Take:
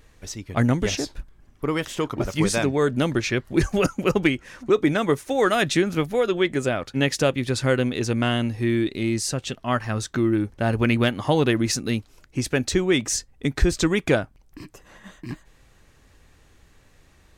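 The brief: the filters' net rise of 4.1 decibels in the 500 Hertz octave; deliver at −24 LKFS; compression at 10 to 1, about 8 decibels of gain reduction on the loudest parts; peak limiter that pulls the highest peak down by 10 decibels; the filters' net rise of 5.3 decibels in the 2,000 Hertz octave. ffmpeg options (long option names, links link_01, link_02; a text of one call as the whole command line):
ffmpeg -i in.wav -af "equalizer=frequency=500:width_type=o:gain=5,equalizer=frequency=2000:width_type=o:gain=6.5,acompressor=threshold=-19dB:ratio=10,volume=4.5dB,alimiter=limit=-13dB:level=0:latency=1" out.wav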